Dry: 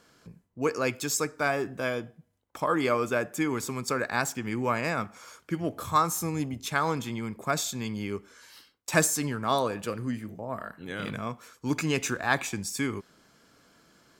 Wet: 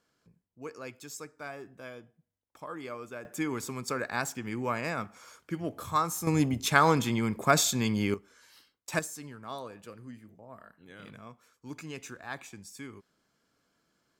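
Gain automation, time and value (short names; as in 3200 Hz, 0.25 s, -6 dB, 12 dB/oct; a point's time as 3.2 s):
-14.5 dB
from 3.25 s -4 dB
from 6.27 s +5 dB
from 8.14 s -6.5 dB
from 8.99 s -14 dB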